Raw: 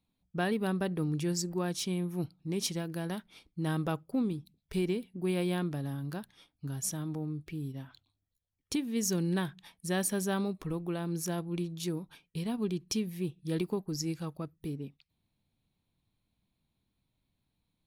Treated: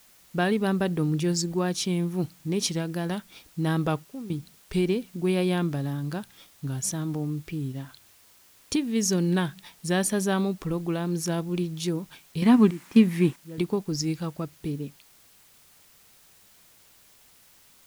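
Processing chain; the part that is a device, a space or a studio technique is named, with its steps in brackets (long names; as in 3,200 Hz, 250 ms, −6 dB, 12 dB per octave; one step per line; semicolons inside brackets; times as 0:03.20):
worn cassette (low-pass filter 10,000 Hz; tape wow and flutter; tape dropouts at 0:04.05/0:12.71/0:13.33, 248 ms −14 dB; white noise bed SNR 28 dB)
0:12.42–0:13.36: octave-band graphic EQ 250/1,000/2,000/8,000 Hz +11/+9/+11/+5 dB
level +6.5 dB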